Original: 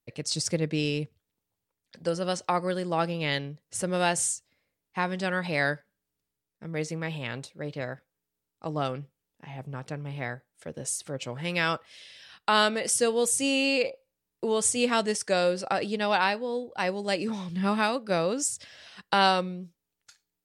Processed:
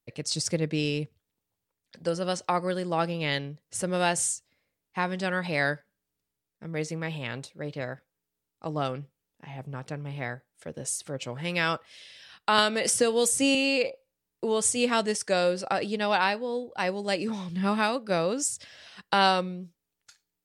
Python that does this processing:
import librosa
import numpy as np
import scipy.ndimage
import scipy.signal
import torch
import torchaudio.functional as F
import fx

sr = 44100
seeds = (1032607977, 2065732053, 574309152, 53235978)

y = fx.band_squash(x, sr, depth_pct=100, at=(12.58, 13.55))